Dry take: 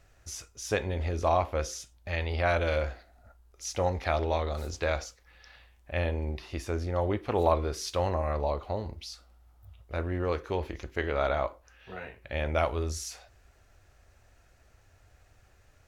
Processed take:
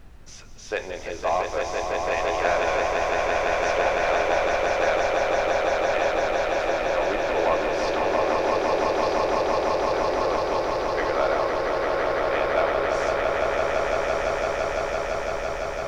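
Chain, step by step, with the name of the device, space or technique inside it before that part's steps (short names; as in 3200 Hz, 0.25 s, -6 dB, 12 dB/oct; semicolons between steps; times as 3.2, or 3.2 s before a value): aircraft cabin announcement (BPF 450–3700 Hz; soft clip -19.5 dBFS, distortion -17 dB; brown noise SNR 13 dB); swelling echo 0.169 s, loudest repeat 8, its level -4 dB; gain +4.5 dB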